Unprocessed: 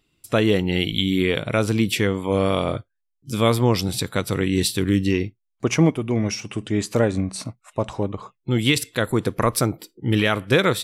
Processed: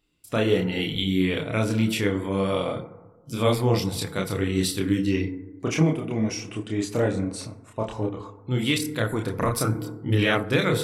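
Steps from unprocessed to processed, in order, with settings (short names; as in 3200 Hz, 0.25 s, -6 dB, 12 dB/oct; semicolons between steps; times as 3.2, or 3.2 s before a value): FDN reverb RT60 1.2 s, low-frequency decay 1×, high-frequency decay 0.3×, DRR 9 dB; chorus voices 4, 1.1 Hz, delay 29 ms, depth 3 ms; gain -1.5 dB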